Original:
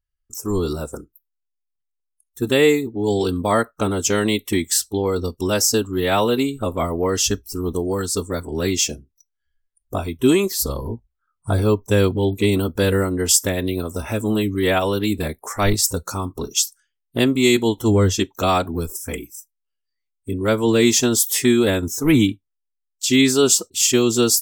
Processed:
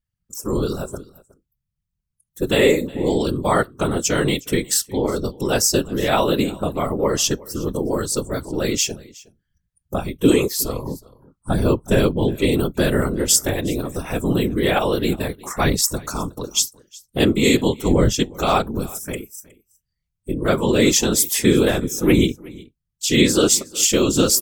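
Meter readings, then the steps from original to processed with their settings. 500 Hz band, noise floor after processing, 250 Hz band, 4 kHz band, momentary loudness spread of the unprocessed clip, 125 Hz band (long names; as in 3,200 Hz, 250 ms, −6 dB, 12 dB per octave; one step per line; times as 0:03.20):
0.0 dB, −79 dBFS, 0.0 dB, 0.0 dB, 12 LU, −0.5 dB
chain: random phases in short frames
single-tap delay 365 ms −22.5 dB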